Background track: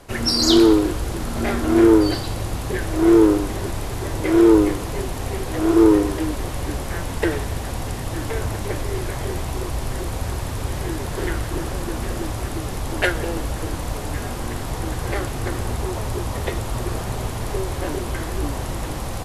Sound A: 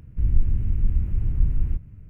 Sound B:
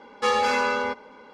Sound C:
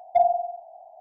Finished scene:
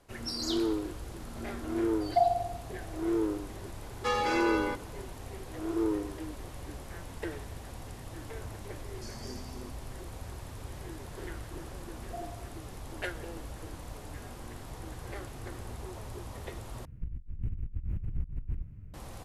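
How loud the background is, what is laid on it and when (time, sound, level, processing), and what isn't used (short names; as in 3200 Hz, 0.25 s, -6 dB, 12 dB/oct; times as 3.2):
background track -16.5 dB
2.01 add C -5.5 dB
3.82 add B -7.5 dB
8.79 add B -11.5 dB + brick-wall FIR band-stop 390–4200 Hz
11.98 add C -2.5 dB + Gaussian blur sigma 22 samples
16.85 replace with A -9.5 dB + negative-ratio compressor -24 dBFS, ratio -0.5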